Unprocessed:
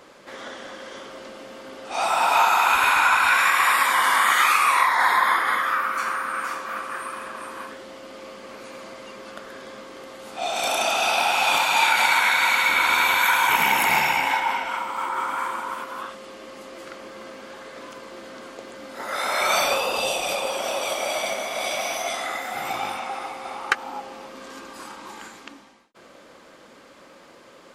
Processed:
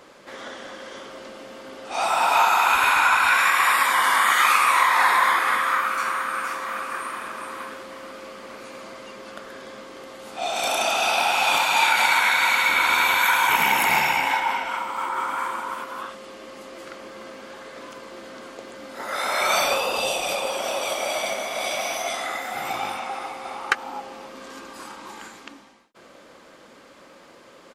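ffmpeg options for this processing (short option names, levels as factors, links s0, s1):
-filter_complex "[0:a]asplit=2[s0][s1];[s1]afade=t=in:st=3.97:d=0.01,afade=t=out:st=4.88:d=0.01,aecho=0:1:460|920|1380|1840|2300|2760|3220|3680|4140:0.375837|0.244294|0.158791|0.103214|0.0670893|0.0436081|0.0283452|0.0184244|0.0119759[s2];[s0][s2]amix=inputs=2:normalize=0,asplit=2[s3][s4];[s4]afade=t=in:st=6.18:d=0.01,afade=t=out:st=6.87:d=0.01,aecho=0:1:430|860|1290|1720|2150|2580|3010|3440:0.298538|0.19405|0.126132|0.0819861|0.0532909|0.0346391|0.0225154|0.014635[s5];[s3][s5]amix=inputs=2:normalize=0"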